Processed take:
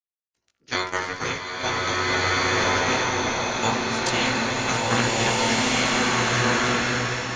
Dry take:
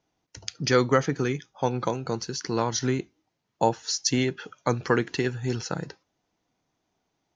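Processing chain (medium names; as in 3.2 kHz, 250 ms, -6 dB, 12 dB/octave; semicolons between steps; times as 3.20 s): spectral peaks clipped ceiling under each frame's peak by 24 dB; bucket-brigade echo 66 ms, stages 1024, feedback 70%, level -6 dB; 0.74–1.19 s: robot voice 91.8 Hz; on a send: echo with a slow build-up 97 ms, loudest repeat 5, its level -12 dB; on the sum: gate -23 dBFS, range -31 dB; chorus voices 2, 0.38 Hz, delay 18 ms, depth 1.8 ms; swelling reverb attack 1660 ms, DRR -7.5 dB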